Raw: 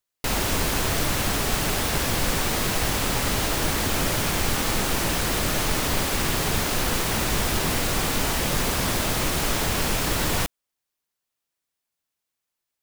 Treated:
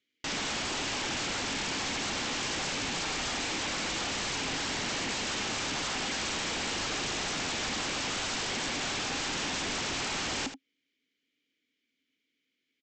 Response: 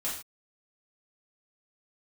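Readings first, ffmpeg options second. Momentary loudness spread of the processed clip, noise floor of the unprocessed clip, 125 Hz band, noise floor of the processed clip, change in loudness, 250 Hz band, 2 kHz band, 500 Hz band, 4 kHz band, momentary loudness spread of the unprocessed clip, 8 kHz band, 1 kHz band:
0 LU, -84 dBFS, -16.0 dB, -82 dBFS, -8.0 dB, -9.5 dB, -5.5 dB, -10.5 dB, -4.0 dB, 0 LU, -8.0 dB, -8.0 dB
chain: -filter_complex "[0:a]equalizer=f=460:t=o:w=0.29:g=8.5,alimiter=limit=-18.5dB:level=0:latency=1:release=213,asplit=3[a][b][c];[a]bandpass=f=270:t=q:w=8,volume=0dB[d];[b]bandpass=f=2.29k:t=q:w=8,volume=-6dB[e];[c]bandpass=f=3.01k:t=q:w=8,volume=-9dB[f];[d][e][f]amix=inputs=3:normalize=0,aresample=16000,aeval=exprs='0.0355*sin(PI/2*8.91*val(0)/0.0355)':c=same,aresample=44100,aecho=1:1:78:0.282,volume=-1.5dB"

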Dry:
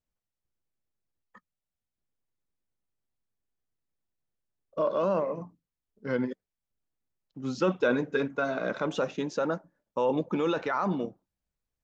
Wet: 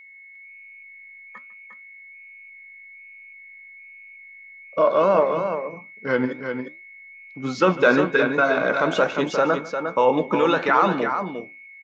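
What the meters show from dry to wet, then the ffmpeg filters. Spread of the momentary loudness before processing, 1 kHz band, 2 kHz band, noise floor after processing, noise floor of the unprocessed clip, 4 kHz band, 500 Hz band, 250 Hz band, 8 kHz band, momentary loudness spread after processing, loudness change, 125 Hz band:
12 LU, +12.0 dB, +13.0 dB, -45 dBFS, under -85 dBFS, +10.0 dB, +9.0 dB, +6.5 dB, n/a, 15 LU, +9.0 dB, +5.5 dB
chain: -filter_complex "[0:a]equalizer=f=1.5k:w=0.34:g=9,aeval=exprs='val(0)+0.00447*sin(2*PI*2200*n/s)':c=same,flanger=delay=6.1:depth=9.8:regen=73:speed=1.2:shape=triangular,asplit=2[a][b];[b]aecho=0:1:150|354:0.119|0.447[c];[a][c]amix=inputs=2:normalize=0,volume=7.5dB"

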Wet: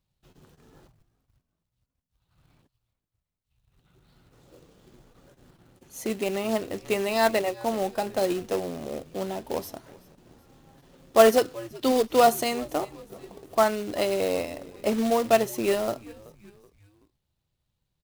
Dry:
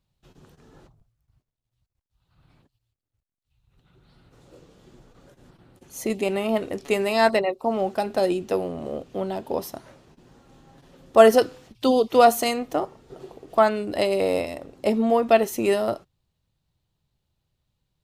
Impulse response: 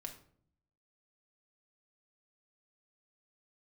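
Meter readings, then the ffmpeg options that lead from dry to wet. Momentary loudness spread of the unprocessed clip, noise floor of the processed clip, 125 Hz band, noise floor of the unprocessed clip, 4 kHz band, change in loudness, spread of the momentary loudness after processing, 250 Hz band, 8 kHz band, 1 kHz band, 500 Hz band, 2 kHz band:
14 LU, -82 dBFS, -2.5 dB, -82 dBFS, -1.5 dB, -3.0 dB, 15 LU, -3.5 dB, +1.0 dB, -3.5 dB, -3.5 dB, -3.0 dB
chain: -filter_complex "[0:a]asplit=4[a][b][c][d];[b]adelay=378,afreqshift=-100,volume=-21.5dB[e];[c]adelay=756,afreqshift=-200,volume=-28.1dB[f];[d]adelay=1134,afreqshift=-300,volume=-34.6dB[g];[a][e][f][g]amix=inputs=4:normalize=0,acrusher=bits=3:mode=log:mix=0:aa=0.000001,volume=-3.5dB"

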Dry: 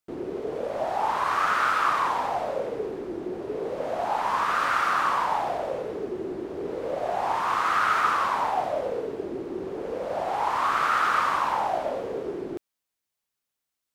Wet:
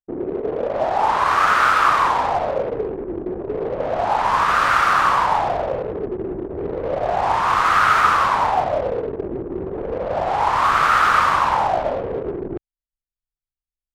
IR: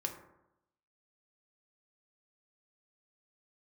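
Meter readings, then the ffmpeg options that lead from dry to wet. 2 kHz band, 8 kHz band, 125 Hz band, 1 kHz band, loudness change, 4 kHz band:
+8.0 dB, +6.5 dB, +12.0 dB, +7.5 dB, +7.5 dB, +7.5 dB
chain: -af "anlmdn=3.98,asubboost=boost=3.5:cutoff=130,volume=8dB"

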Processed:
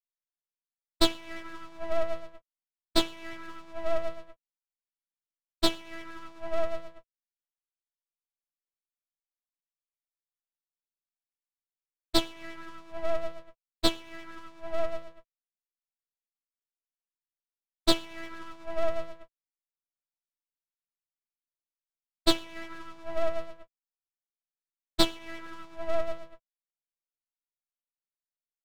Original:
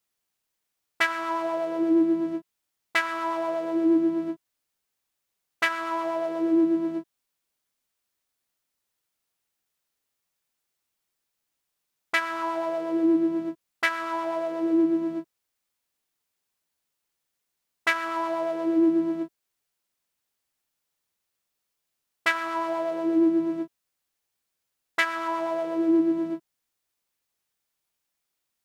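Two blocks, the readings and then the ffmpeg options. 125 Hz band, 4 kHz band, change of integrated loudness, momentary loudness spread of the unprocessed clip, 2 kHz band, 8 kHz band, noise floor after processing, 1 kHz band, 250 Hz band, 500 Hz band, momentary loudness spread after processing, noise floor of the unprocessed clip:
+3.5 dB, +6.5 dB, -6.5 dB, 10 LU, -13.0 dB, n/a, under -85 dBFS, -8.5 dB, -13.0 dB, -5.0 dB, 17 LU, -82 dBFS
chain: -af "agate=range=-33dB:threshold=-18dB:ratio=3:detection=peak,equalizer=f=2.4k:w=0.86:g=9.5,aeval=exprs='abs(val(0))':c=same,volume=-1.5dB"

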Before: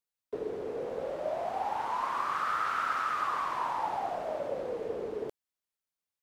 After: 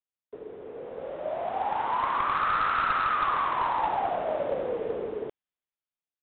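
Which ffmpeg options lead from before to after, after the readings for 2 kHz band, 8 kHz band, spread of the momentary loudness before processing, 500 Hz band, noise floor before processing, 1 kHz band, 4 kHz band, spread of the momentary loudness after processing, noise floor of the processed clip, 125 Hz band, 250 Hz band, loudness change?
+5.5 dB, under -25 dB, 7 LU, +3.0 dB, under -85 dBFS, +5.0 dB, +5.0 dB, 16 LU, under -85 dBFS, +5.5 dB, +3.0 dB, +5.5 dB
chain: -af "dynaudnorm=f=300:g=9:m=12.5dB,aresample=8000,aeval=exprs='clip(val(0),-1,0.168)':c=same,aresample=44100,volume=-6.5dB"

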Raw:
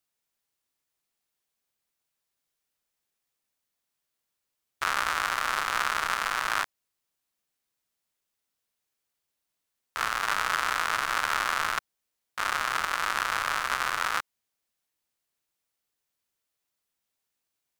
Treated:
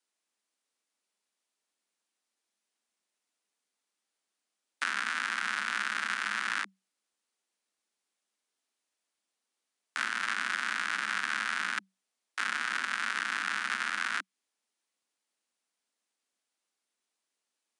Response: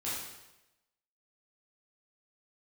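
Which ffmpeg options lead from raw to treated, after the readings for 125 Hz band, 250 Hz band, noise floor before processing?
under -10 dB, -1.0 dB, -83 dBFS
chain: -filter_complex "[0:a]aresample=22050,aresample=44100,acrossover=split=160|790|3600[a][b][c][d];[a]acompressor=threshold=-52dB:ratio=4[e];[b]acompressor=threshold=-51dB:ratio=4[f];[c]acompressor=threshold=-28dB:ratio=4[g];[d]acompressor=threshold=-42dB:ratio=4[h];[e][f][g][h]amix=inputs=4:normalize=0,afreqshift=190"

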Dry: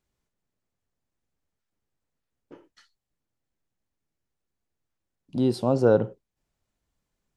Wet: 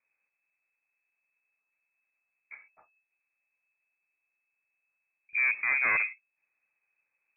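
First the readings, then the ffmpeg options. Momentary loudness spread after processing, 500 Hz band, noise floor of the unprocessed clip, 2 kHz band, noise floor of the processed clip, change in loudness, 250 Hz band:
9 LU, -28.0 dB, -84 dBFS, +18.0 dB, -84 dBFS, -2.5 dB, under -30 dB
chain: -af "aeval=exprs='0.473*(cos(1*acos(clip(val(0)/0.473,-1,1)))-cos(1*PI/2))+0.211*(cos(6*acos(clip(val(0)/0.473,-1,1)))-cos(6*PI/2))+0.0944*(cos(8*acos(clip(val(0)/0.473,-1,1)))-cos(8*PI/2))':c=same,aeval=exprs='clip(val(0),-1,0.0841)':c=same,lowpass=f=2.2k:t=q:w=0.5098,lowpass=f=2.2k:t=q:w=0.6013,lowpass=f=2.2k:t=q:w=0.9,lowpass=f=2.2k:t=q:w=2.563,afreqshift=-2600"

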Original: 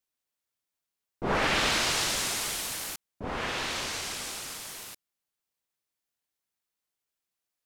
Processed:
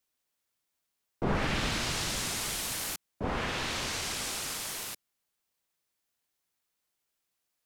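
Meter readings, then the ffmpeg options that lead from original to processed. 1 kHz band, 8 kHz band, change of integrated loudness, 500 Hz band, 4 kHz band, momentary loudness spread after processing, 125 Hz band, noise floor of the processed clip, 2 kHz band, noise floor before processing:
-4.0 dB, -2.0 dB, -3.0 dB, -2.5 dB, -3.5 dB, 7 LU, +4.0 dB, -83 dBFS, -4.5 dB, under -85 dBFS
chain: -filter_complex "[0:a]acrossover=split=240[a][b];[b]acompressor=threshold=-36dB:ratio=5[c];[a][c]amix=inputs=2:normalize=0,volume=4.5dB"

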